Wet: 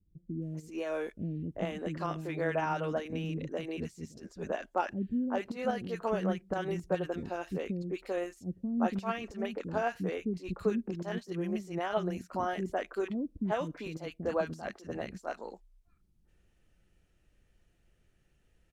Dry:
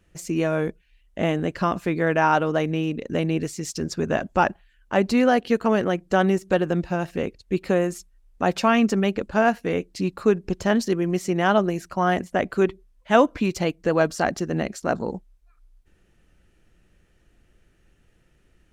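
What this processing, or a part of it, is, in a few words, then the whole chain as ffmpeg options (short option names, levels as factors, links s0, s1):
de-esser from a sidechain: -filter_complex "[0:a]asettb=1/sr,asplit=3[s0][s1][s2];[s0]atrim=end=14.734[s3];[s1]atrim=start=14.73:end=15.13,asetpts=PTS-STARTPTS,afade=t=in:d=0.004:c=qsin,afade=t=out:st=0.396:d=0.004:c=qsin,equalizer=f=360:w=0.8:g=-5.5[s4];[s2]atrim=start=15.126[s5];[s3][s4]acrossfade=d=0.004:c1=hsin:c2=qsin[s6];[s6][s5]acrossfade=d=0.004:c1=qsin:c2=hsin,acrossover=split=300|1400[s7][s8][s9];[s8]adelay=390[s10];[s9]adelay=420[s11];[s7][s10][s11]amix=inputs=3:normalize=0,asplit=2[s12][s13];[s13]highpass=f=4600:w=0.5412,highpass=f=4600:w=1.3066,apad=whole_len=844263[s14];[s12][s14]sidechaincompress=threshold=0.00398:ratio=6:attack=1.1:release=61,volume=0.398"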